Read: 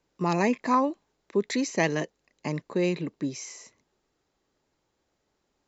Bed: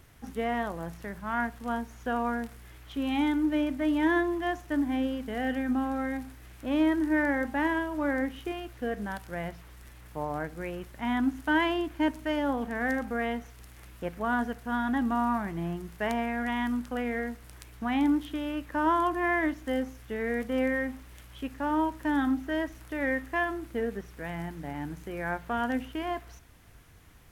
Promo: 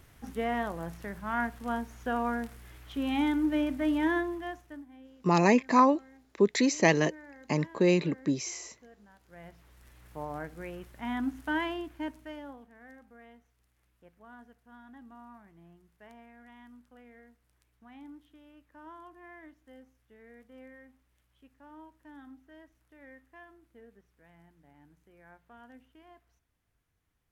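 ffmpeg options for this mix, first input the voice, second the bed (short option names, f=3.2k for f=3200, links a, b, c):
-filter_complex "[0:a]adelay=5050,volume=2dB[a];[1:a]volume=17.5dB,afade=t=out:st=3.9:d=0.96:silence=0.0749894,afade=t=in:st=9.17:d=0.94:silence=0.11885,afade=t=out:st=11.48:d=1.2:silence=0.11885[b];[a][b]amix=inputs=2:normalize=0"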